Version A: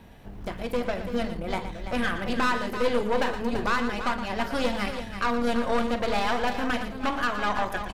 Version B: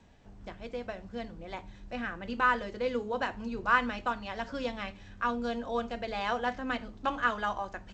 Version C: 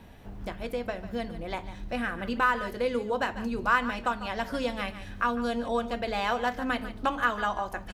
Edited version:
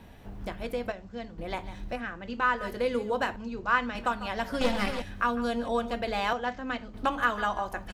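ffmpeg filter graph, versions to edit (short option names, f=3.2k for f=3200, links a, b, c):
-filter_complex "[1:a]asplit=4[a][b][c][d];[2:a]asplit=6[e][f][g][h][i][j];[e]atrim=end=0.922[k];[a]atrim=start=0.918:end=1.382[l];[f]atrim=start=1.378:end=2.02[m];[b]atrim=start=1.92:end=2.65[n];[g]atrim=start=2.55:end=3.362[o];[c]atrim=start=3.358:end=3.952[p];[h]atrim=start=3.948:end=4.612[q];[0:a]atrim=start=4.608:end=5.022[r];[i]atrim=start=5.018:end=6.332[s];[d]atrim=start=6.328:end=6.942[t];[j]atrim=start=6.938[u];[k][l]acrossfade=d=0.004:c1=hsin:c2=hsin[v];[v][m]acrossfade=d=0.004:c1=hsin:c2=hsin[w];[w][n]acrossfade=d=0.1:c1=tri:c2=tri[x];[x][o]acrossfade=d=0.1:c1=tri:c2=tri[y];[y][p]acrossfade=d=0.004:c1=hsin:c2=hsin[z];[z][q]acrossfade=d=0.004:c1=hsin:c2=hsin[aa];[aa][r]acrossfade=d=0.004:c1=hsin:c2=hsin[ab];[ab][s]acrossfade=d=0.004:c1=hsin:c2=hsin[ac];[ac][t]acrossfade=d=0.004:c1=hsin:c2=hsin[ad];[ad][u]acrossfade=d=0.004:c1=hsin:c2=hsin"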